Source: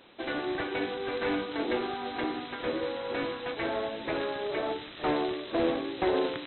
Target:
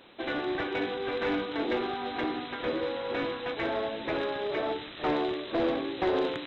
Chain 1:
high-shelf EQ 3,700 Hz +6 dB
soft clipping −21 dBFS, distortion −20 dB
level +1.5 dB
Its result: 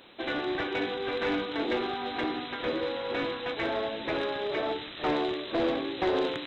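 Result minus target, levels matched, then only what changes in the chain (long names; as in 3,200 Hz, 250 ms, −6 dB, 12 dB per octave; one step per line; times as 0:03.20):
8,000 Hz band +4.0 dB
remove: high-shelf EQ 3,700 Hz +6 dB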